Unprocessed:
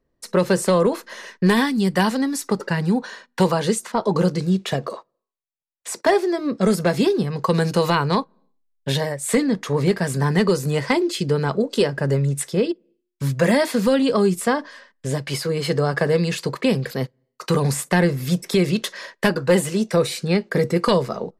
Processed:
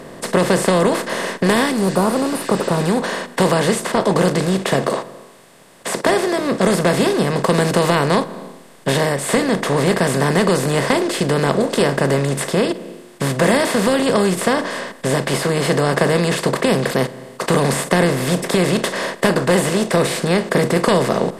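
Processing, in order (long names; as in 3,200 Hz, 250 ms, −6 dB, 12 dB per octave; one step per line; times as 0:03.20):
compressor on every frequency bin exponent 0.4
notch filter 4,000 Hz, Q 27
healed spectral selection 0:01.82–0:02.80, 1,500–8,600 Hz
level −3 dB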